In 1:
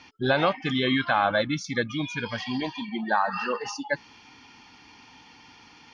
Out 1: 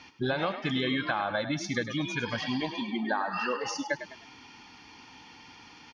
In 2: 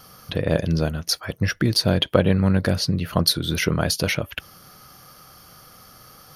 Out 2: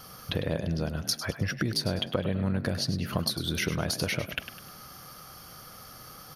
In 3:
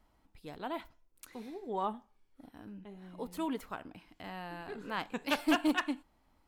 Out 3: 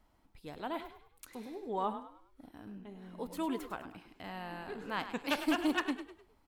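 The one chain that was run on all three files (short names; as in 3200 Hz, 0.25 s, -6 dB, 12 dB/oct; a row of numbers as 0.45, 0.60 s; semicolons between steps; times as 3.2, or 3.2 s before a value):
compressor 6:1, threshold -26 dBFS; on a send: frequency-shifting echo 0.102 s, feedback 37%, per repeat +38 Hz, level -11 dB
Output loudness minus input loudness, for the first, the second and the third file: -4.5, -8.5, -1.0 LU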